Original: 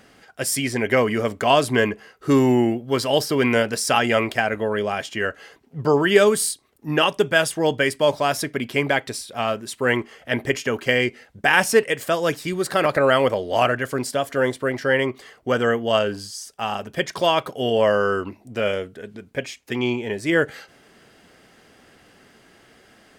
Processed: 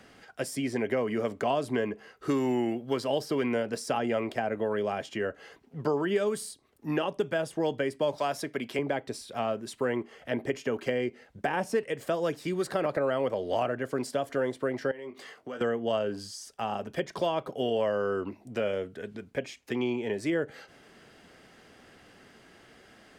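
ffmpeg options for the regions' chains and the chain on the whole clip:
ffmpeg -i in.wav -filter_complex "[0:a]asettb=1/sr,asplit=3[link_01][link_02][link_03];[link_01]atrim=end=8.184[link_04];[link_02]atrim=start=8.18:end=8.79,asetpts=PTS-STARTPTS,afade=type=in:duration=0.004:curve=qsin,afade=type=out:start_time=0.606:duration=0.004:curve=qsin,highpass=110,tiltshelf=frequency=710:gain=-6[link_05];[link_03]atrim=start=8.786[link_06];[link_04][link_05]acrossfade=duration=0.004:curve1=hsin:curve2=qsin[link_07];[link_07][link_06]acrossfade=duration=0.004:curve1=qsin:curve2=hsin,asettb=1/sr,asplit=3[link_08][link_09][link_10];[link_08]atrim=end=14.914[link_11];[link_09]atrim=start=14.91:end=15.61,asetpts=PTS-STARTPTS,afade=type=in:duration=0.004:curve=qsin,afade=type=out:start_time=0.696:duration=0.004:curve=qsin,asplit=2[link_12][link_13];[link_13]adelay=20,volume=-7dB[link_14];[link_12][link_14]amix=inputs=2:normalize=0,atrim=end_sample=30870,acompressor=threshold=-35dB:ratio=4:attack=3.2:release=140:knee=1:detection=peak,highpass=170[link_15];[link_10]atrim=start=15.606[link_16];[link_11][link_15]acrossfade=duration=0.004:curve1=hsin:curve2=qsin[link_17];[link_17][link_16]acrossfade=duration=0.004:curve1=qsin:curve2=hsin,highshelf=frequency=9600:gain=-7,acrossover=split=170|840[link_18][link_19][link_20];[link_18]acompressor=threshold=-46dB:ratio=4[link_21];[link_19]acompressor=threshold=-24dB:ratio=4[link_22];[link_20]acompressor=threshold=-37dB:ratio=4[link_23];[link_21][link_22][link_23]amix=inputs=3:normalize=0,volume=-2.5dB" out.wav

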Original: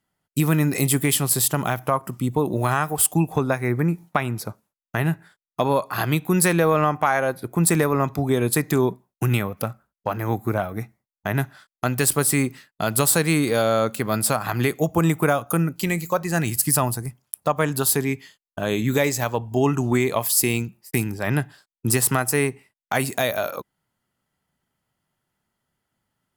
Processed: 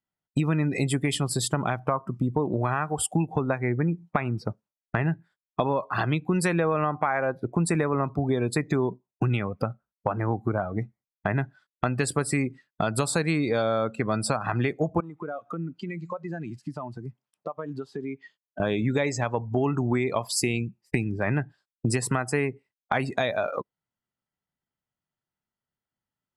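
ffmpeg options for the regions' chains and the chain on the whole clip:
ffmpeg -i in.wav -filter_complex "[0:a]asettb=1/sr,asplit=3[link_01][link_02][link_03];[link_01]atrim=end=15.004[link_04];[link_02]atrim=start=15:end=18.6,asetpts=PTS-STARTPTS,afade=type=in:duration=0.004:curve=qsin,afade=type=out:start_time=3.596:duration=0.004:curve=qsin,highpass=180,lowpass=4900,acompressor=threshold=-38dB:ratio=4:attack=3.2:release=140:knee=1:detection=peak[link_05];[link_03]atrim=start=18.596[link_06];[link_04][link_05]acrossfade=duration=0.004:curve1=hsin:curve2=qsin[link_07];[link_07][link_06]acrossfade=duration=0.004:curve1=qsin:curve2=hsin,lowpass=6400,afftdn=noise_reduction=22:noise_floor=-33,acompressor=threshold=-33dB:ratio=3,volume=7.5dB" out.wav

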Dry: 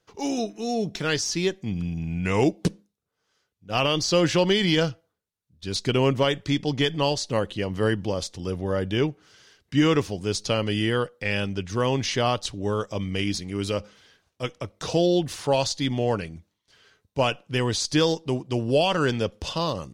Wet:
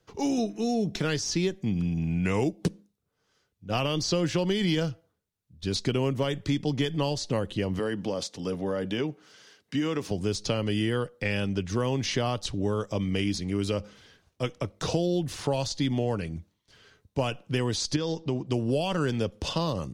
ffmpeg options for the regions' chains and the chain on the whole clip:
ffmpeg -i in.wav -filter_complex "[0:a]asettb=1/sr,asplit=3[link_01][link_02][link_03];[link_01]atrim=end=7.794[link_04];[link_02]atrim=start=7.79:end=10.11,asetpts=PTS-STARTPTS,afade=type=in:duration=0.004:curve=qsin,afade=type=out:start_time=2.316:duration=0.004:curve=qsin,highpass=240,bandreject=frequency=360:width=6.9,acompressor=threshold=-28dB:ratio=2:attack=3.2:release=140:knee=1:detection=peak[link_05];[link_03]atrim=start=10.106[link_06];[link_04][link_05]acrossfade=duration=0.004:curve1=hsin:curve2=qsin[link_07];[link_07][link_06]acrossfade=duration=0.004:curve1=qsin:curve2=hsin,asettb=1/sr,asplit=3[link_08][link_09][link_10];[link_08]atrim=end=17.964[link_11];[link_09]atrim=start=17.96:end=18.47,asetpts=PTS-STARTPTS,afade=type=in:duration=0.004:curve=qsin,afade=type=out:start_time=0.506:duration=0.004:curve=qsin,lowpass=frequency=6600:width=0.5412,lowpass=frequency=6600:width=1.3066,acompressor=threshold=-28dB:ratio=2:attack=3.2:release=140:knee=1:detection=peak[link_12];[link_10]atrim=start=18.466[link_13];[link_11][link_12]acrossfade=duration=0.004:curve1=hsin:curve2=qsin[link_14];[link_14][link_13]acrossfade=duration=0.004:curve1=qsin:curve2=hsin,lowshelf=frequency=350:gain=7.5,acrossover=split=180|7900[link_15][link_16][link_17];[link_15]acompressor=threshold=-34dB:ratio=4[link_18];[link_16]acompressor=threshold=-26dB:ratio=4[link_19];[link_17]acompressor=threshold=-49dB:ratio=4[link_20];[link_18][link_19][link_20]amix=inputs=3:normalize=0" out.wav

